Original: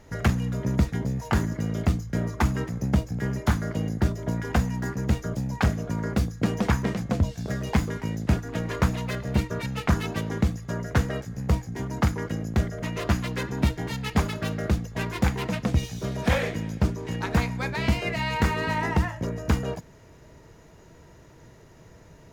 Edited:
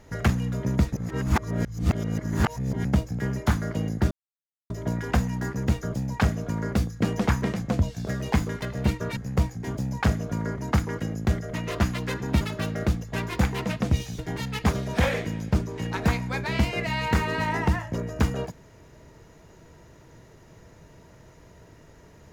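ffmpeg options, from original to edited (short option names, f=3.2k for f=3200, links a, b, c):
-filter_complex "[0:a]asplit=11[a][b][c][d][e][f][g][h][i][j][k];[a]atrim=end=0.932[l];[b]atrim=start=0.928:end=2.852,asetpts=PTS-STARTPTS,areverse[m];[c]atrim=start=2.848:end=4.11,asetpts=PTS-STARTPTS,afade=t=out:st=1.258:d=0.004:c=hsin,apad=pad_dur=0.59[n];[d]atrim=start=4.11:end=8.032,asetpts=PTS-STARTPTS,afade=t=in:d=0.004:c=hsin[o];[e]atrim=start=9.118:end=9.672[p];[f]atrim=start=11.288:end=11.872[q];[g]atrim=start=5.328:end=6.162[r];[h]atrim=start=11.868:end=13.702[s];[i]atrim=start=14.238:end=16.022[t];[j]atrim=start=13.698:end=14.242[u];[k]atrim=start=16.018[v];[l][m]acrossfade=d=0.004:c1=hsin:c2=hsin[w];[n][o]concat=n=2:v=0:a=1[x];[w][x]acrossfade=d=0.004:c1=hsin:c2=hsin[y];[y][p]acrossfade=d=0.004:c1=hsin:c2=hsin[z];[z][q]acrossfade=d=0.004:c1=hsin:c2=hsin[aa];[aa][r]acrossfade=d=0.004:c1=hsin:c2=hsin[ab];[ab][s]acrossfade=d=0.004:c1=hsin:c2=hsin[ac];[ac][t]acrossfade=d=0.004:c1=hsin:c2=hsin[ad];[ad][u]acrossfade=d=0.004:c1=hsin:c2=hsin[ae];[ae][v]acrossfade=d=0.004:c1=hsin:c2=hsin"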